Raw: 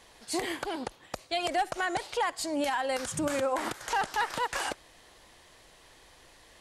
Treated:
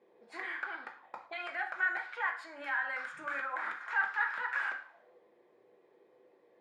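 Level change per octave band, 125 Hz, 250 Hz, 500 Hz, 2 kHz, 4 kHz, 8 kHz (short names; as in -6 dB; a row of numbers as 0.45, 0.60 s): under -25 dB, -21.0 dB, -17.0 dB, +3.0 dB, -16.0 dB, under -25 dB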